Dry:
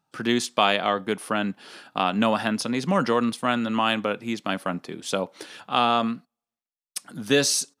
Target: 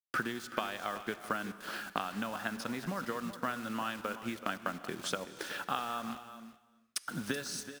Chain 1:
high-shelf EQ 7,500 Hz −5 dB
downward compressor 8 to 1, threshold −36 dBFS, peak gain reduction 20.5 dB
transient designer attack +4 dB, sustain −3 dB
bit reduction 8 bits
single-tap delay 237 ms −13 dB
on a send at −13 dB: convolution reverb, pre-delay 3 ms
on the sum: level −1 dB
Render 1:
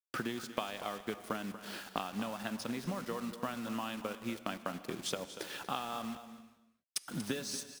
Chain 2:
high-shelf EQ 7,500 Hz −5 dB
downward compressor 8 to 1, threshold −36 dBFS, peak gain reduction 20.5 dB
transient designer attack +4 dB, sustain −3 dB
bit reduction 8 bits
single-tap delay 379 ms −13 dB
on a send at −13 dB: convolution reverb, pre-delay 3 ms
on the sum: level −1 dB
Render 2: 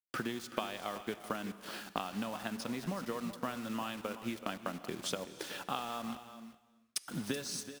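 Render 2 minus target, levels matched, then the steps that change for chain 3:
2,000 Hz band −4.0 dB
add after downward compressor: parametric band 1,500 Hz +8 dB 0.69 octaves

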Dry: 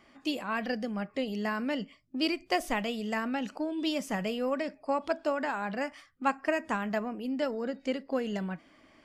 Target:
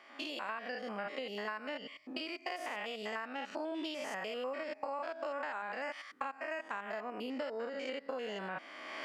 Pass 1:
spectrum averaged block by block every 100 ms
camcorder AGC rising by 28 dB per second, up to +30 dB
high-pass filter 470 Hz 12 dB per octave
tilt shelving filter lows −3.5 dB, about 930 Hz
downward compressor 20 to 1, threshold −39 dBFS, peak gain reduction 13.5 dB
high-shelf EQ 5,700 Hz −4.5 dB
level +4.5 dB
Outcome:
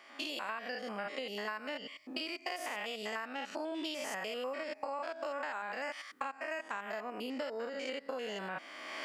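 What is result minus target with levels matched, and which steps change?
8,000 Hz band +6.0 dB
change: high-shelf EQ 5,700 Hz −15.5 dB

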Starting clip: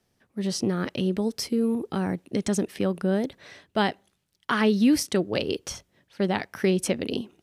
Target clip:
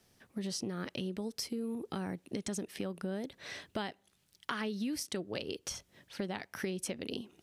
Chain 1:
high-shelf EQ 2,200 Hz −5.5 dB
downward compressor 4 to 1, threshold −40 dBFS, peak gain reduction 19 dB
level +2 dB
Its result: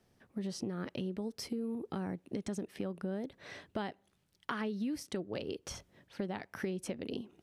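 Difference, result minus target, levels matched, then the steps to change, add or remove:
4,000 Hz band −5.0 dB
change: high-shelf EQ 2,200 Hz +5 dB

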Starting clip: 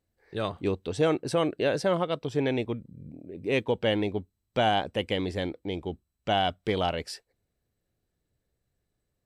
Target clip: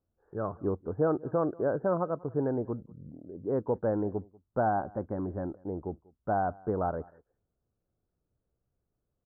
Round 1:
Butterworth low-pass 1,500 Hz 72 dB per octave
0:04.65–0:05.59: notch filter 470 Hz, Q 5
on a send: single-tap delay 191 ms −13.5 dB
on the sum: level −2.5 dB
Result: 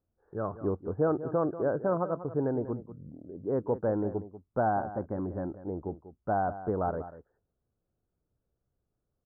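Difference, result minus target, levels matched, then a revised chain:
echo-to-direct +11 dB
Butterworth low-pass 1,500 Hz 72 dB per octave
0:04.65–0:05.59: notch filter 470 Hz, Q 5
on a send: single-tap delay 191 ms −24.5 dB
on the sum: level −2.5 dB

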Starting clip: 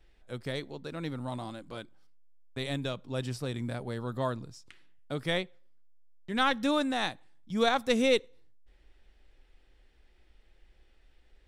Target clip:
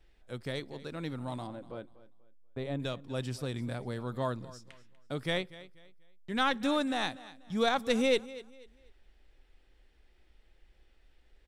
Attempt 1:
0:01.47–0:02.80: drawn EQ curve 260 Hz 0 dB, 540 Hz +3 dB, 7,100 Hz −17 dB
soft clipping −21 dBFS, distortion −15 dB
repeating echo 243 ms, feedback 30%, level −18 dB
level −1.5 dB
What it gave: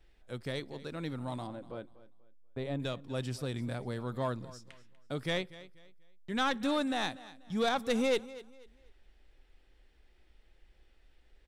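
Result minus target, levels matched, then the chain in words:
soft clipping: distortion +13 dB
0:01.47–0:02.80: drawn EQ curve 260 Hz 0 dB, 540 Hz +3 dB, 7,100 Hz −17 dB
soft clipping −12.5 dBFS, distortion −28 dB
repeating echo 243 ms, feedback 30%, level −18 dB
level −1.5 dB

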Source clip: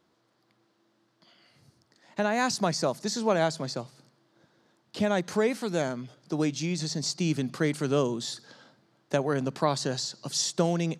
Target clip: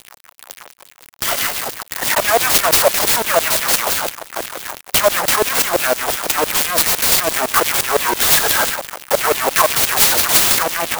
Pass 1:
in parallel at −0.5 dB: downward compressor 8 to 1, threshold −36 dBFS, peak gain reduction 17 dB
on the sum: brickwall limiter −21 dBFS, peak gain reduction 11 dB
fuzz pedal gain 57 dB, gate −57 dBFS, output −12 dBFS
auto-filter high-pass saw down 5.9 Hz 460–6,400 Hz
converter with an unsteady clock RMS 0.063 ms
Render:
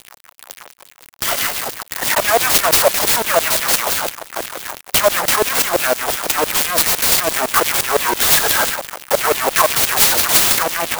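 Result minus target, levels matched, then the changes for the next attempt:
downward compressor: peak gain reduction +9 dB
change: downward compressor 8 to 1, threshold −26 dBFS, peak gain reduction 8 dB

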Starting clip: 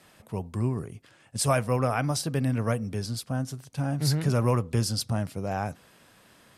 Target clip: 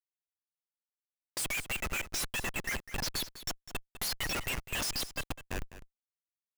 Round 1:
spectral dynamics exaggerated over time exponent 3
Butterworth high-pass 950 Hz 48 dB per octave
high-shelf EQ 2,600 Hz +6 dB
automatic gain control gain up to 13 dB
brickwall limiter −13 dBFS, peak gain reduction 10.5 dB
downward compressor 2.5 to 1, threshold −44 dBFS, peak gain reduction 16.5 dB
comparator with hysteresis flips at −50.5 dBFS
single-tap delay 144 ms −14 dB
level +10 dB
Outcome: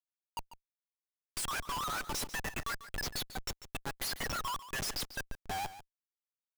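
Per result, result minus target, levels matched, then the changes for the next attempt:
1,000 Hz band +8.5 dB; downward compressor: peak gain reduction +6 dB; echo 58 ms early
change: Butterworth high-pass 2,000 Hz 48 dB per octave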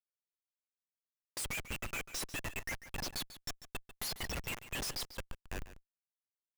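echo 58 ms early; downward compressor: peak gain reduction +5 dB
change: single-tap delay 202 ms −14 dB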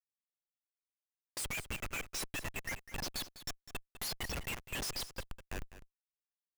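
downward compressor: peak gain reduction +5 dB
change: downward compressor 2.5 to 1, threshold −35.5 dBFS, peak gain reduction 10.5 dB

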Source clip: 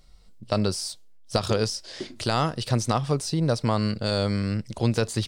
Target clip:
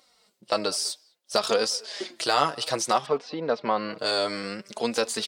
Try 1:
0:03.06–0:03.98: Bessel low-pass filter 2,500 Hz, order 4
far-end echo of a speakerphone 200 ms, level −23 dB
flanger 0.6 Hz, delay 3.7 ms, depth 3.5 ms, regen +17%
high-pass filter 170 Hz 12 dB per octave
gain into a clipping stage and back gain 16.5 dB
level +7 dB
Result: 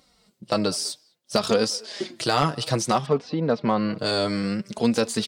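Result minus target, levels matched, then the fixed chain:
125 Hz band +12.5 dB
0:03.06–0:03.98: Bessel low-pass filter 2,500 Hz, order 4
far-end echo of a speakerphone 200 ms, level −23 dB
flanger 0.6 Hz, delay 3.7 ms, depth 3.5 ms, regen +17%
high-pass filter 450 Hz 12 dB per octave
gain into a clipping stage and back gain 16.5 dB
level +7 dB

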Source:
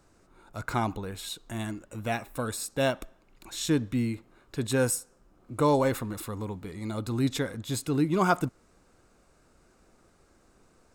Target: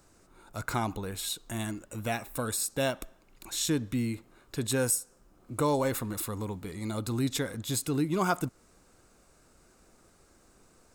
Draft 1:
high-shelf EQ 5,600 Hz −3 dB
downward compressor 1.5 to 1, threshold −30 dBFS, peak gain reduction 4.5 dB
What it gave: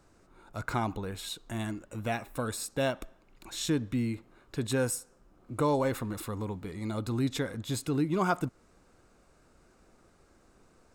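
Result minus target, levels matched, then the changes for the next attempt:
8,000 Hz band −5.5 dB
change: high-shelf EQ 5,600 Hz +8.5 dB

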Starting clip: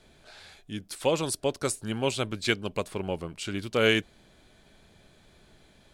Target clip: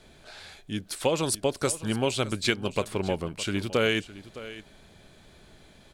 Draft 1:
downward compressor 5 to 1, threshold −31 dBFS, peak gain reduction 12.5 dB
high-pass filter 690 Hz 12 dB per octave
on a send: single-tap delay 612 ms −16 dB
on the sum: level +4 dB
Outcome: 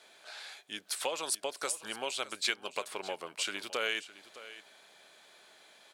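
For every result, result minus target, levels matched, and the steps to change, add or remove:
downward compressor: peak gain reduction +5 dB; 500 Hz band −4.0 dB
change: downward compressor 5 to 1, threshold −24.5 dBFS, peak gain reduction 7.5 dB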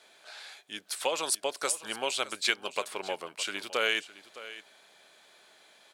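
500 Hz band −4.0 dB
remove: high-pass filter 690 Hz 12 dB per octave

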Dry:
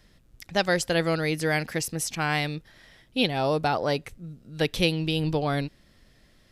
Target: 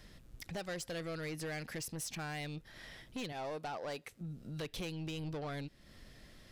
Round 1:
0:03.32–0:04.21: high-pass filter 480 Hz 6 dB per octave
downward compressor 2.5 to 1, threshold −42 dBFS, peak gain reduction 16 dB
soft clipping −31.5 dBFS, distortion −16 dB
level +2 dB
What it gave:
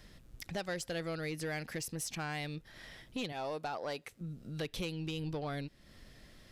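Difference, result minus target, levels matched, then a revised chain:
soft clipping: distortion −6 dB
0:03.32–0:04.21: high-pass filter 480 Hz 6 dB per octave
downward compressor 2.5 to 1, threshold −42 dBFS, peak gain reduction 16 dB
soft clipping −38 dBFS, distortion −9 dB
level +2 dB

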